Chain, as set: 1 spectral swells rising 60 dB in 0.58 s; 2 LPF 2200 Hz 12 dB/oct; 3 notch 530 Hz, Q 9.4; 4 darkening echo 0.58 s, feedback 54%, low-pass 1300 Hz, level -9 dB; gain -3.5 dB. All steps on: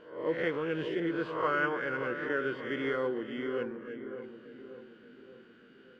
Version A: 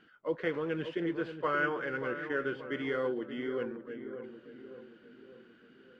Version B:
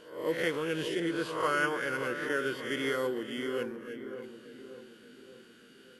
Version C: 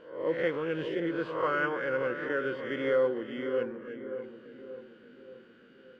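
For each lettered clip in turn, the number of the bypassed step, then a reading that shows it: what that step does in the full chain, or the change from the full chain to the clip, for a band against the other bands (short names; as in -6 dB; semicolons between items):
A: 1, loudness change -1.5 LU; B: 2, 4 kHz band +7.5 dB; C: 3, 500 Hz band +3.5 dB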